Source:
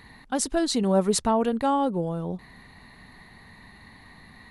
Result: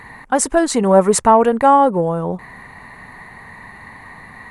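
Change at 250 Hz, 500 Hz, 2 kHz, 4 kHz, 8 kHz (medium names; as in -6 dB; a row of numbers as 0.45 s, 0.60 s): +6.5 dB, +11.5 dB, +12.5 dB, +1.0 dB, +9.0 dB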